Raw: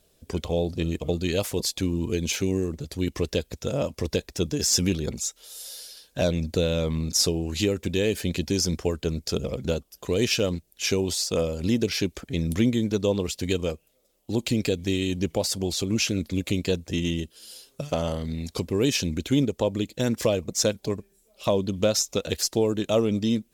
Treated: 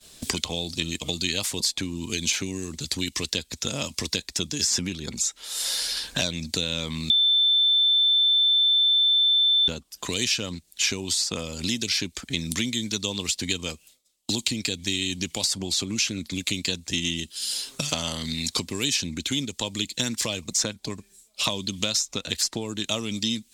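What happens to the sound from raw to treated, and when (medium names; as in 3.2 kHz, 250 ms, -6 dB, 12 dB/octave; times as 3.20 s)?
7.10–9.68 s: bleep 3.54 kHz -17.5 dBFS
whole clip: graphic EQ 250/500/1000/2000/4000/8000 Hz +5/-6/+6/+6/+9/+11 dB; expander -47 dBFS; three bands compressed up and down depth 100%; trim -8.5 dB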